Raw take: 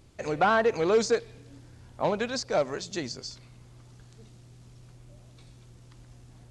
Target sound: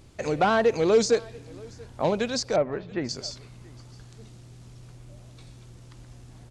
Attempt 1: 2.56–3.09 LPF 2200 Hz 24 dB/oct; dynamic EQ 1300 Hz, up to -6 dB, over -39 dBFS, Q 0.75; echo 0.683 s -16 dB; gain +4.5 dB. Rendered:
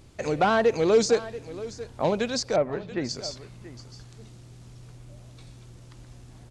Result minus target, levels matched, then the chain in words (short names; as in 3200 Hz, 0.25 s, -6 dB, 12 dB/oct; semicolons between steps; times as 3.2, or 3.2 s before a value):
echo-to-direct +8.5 dB
2.56–3.09 LPF 2200 Hz 24 dB/oct; dynamic EQ 1300 Hz, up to -6 dB, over -39 dBFS, Q 0.75; echo 0.683 s -24.5 dB; gain +4.5 dB